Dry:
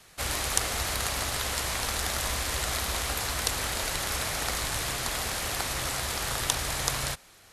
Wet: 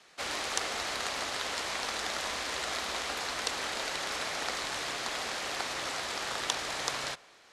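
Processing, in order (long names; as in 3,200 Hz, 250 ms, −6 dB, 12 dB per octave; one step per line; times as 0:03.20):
low-pass filter 11,000 Hz 12 dB per octave
three-way crossover with the lows and the highs turned down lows −20 dB, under 210 Hz, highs −14 dB, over 6,900 Hz
on a send: convolution reverb RT60 2.0 s, pre-delay 55 ms, DRR 22.5 dB
on the sum: level −2 dB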